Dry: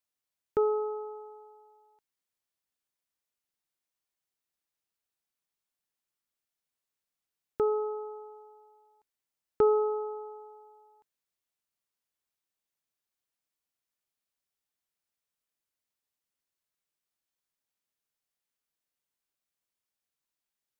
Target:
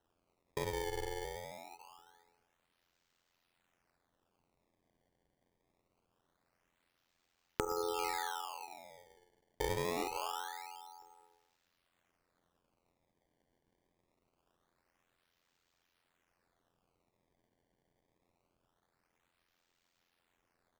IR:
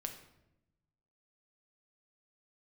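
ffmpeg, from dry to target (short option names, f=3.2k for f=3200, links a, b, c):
-filter_complex "[1:a]atrim=start_sample=2205,afade=t=out:st=0.37:d=0.01,atrim=end_sample=16758,asetrate=25578,aresample=44100[a];[0:a][a]afir=irnorm=-1:irlink=0,acompressor=threshold=-41dB:ratio=8,asettb=1/sr,asplit=3[b][c][d];[b]atrim=end=7.654[e];[c]atrim=start=7.65:end=10.03,asetpts=PTS-STARTPTS,afade=t=in:d=0.004:c=qsin,afade=t=out:st=2.376:d=0.004:c=qsin,adynamicequalizer=threshold=0.00126:dfrequency=820:dqfactor=1.1:tfrequency=820:tqfactor=1.1:attack=5:release=100:ratio=0.375:range=2:mode=boostabove:tftype=bell[f];[d]atrim=start=10.026[g];[e][f]acrossfade=d=0.004:c1=hsin:c2=qsin[h];[h][g]acrossfade=d=0.004:c1=qsin:c2=hsin,tremolo=f=87:d=0.889,equalizer=f=260:w=0.46:g=-7.5,asplit=2[i][j];[j]adelay=119,lowpass=f=880:p=1,volume=-15.5dB,asplit=2[k][l];[l]adelay=119,lowpass=f=880:p=1,volume=0.52,asplit=2[m][n];[n]adelay=119,lowpass=f=880:p=1,volume=0.52,asplit=2[o][p];[p]adelay=119,lowpass=f=880:p=1,volume=0.52,asplit=2[q][r];[r]adelay=119,lowpass=f=880:p=1,volume=0.52[s];[i][k][m][o][q][s]amix=inputs=6:normalize=0,acrusher=samples=19:mix=1:aa=0.000001:lfo=1:lforange=30.4:lforate=0.24,volume=14dB"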